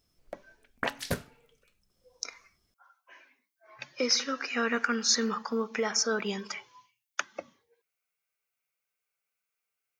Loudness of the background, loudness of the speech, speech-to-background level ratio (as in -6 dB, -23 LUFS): -35.0 LUFS, -30.0 LUFS, 5.0 dB